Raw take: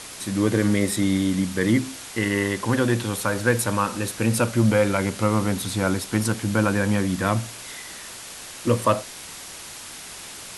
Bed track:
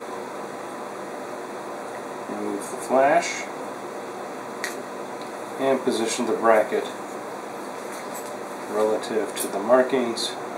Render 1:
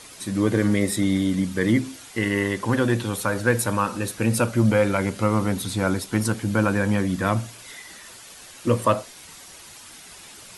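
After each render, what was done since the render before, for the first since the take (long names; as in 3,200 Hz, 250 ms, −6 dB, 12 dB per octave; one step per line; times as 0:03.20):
broadband denoise 8 dB, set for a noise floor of −39 dBFS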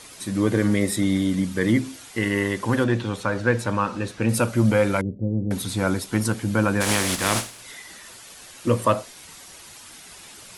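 0:02.84–0:04.29: high-frequency loss of the air 89 metres
0:05.01–0:05.51: Gaussian smoothing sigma 21 samples
0:06.80–0:07.59: compressing power law on the bin magnitudes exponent 0.42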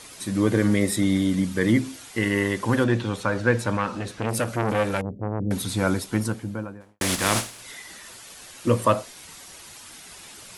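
0:03.77–0:05.40: saturating transformer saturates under 1,100 Hz
0:05.90–0:07.01: fade out and dull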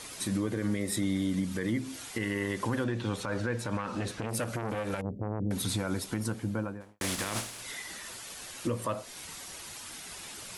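downward compressor 6 to 1, threshold −26 dBFS, peak gain reduction 12 dB
brickwall limiter −21 dBFS, peak gain reduction 8.5 dB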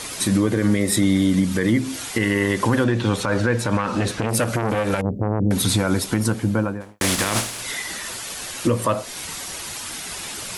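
level +12 dB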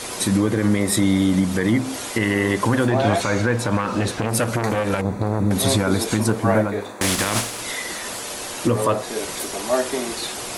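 mix in bed track −3.5 dB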